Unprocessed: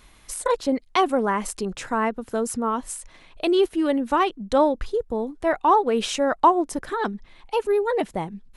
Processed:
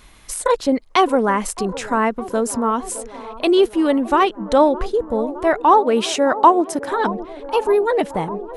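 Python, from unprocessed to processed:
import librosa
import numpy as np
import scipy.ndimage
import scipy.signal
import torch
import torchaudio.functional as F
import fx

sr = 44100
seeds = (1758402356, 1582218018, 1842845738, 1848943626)

p1 = fx.highpass(x, sr, hz=110.0, slope=12, at=(5.78, 6.9))
p2 = p1 + fx.echo_wet_bandpass(p1, sr, ms=614, feedback_pct=74, hz=560.0, wet_db=-15.0, dry=0)
y = p2 * 10.0 ** (5.0 / 20.0)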